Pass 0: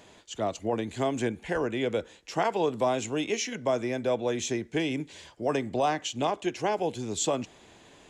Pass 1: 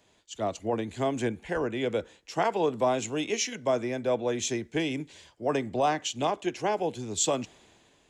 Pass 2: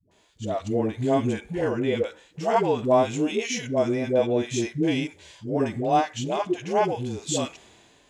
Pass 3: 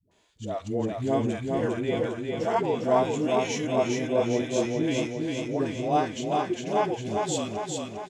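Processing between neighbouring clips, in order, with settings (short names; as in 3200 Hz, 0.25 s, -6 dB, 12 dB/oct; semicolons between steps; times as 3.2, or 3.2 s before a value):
three-band expander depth 40%
dispersion highs, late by 0.114 s, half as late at 430 Hz; harmonic-percussive split percussive -12 dB; gain +8 dB
feedback echo 0.403 s, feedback 57%, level -3.5 dB; gain -4 dB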